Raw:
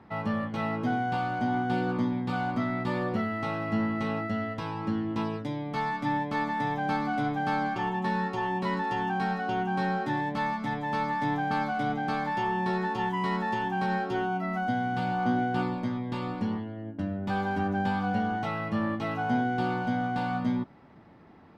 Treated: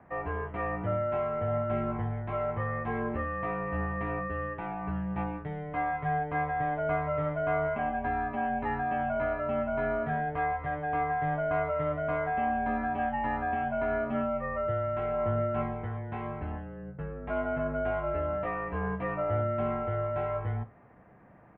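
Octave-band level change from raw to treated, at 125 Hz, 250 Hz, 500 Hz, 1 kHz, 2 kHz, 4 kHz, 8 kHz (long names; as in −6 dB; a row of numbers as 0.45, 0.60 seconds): −1.0 dB, −7.5 dB, +4.5 dB, −2.5 dB, −3.5 dB, below −10 dB, can't be measured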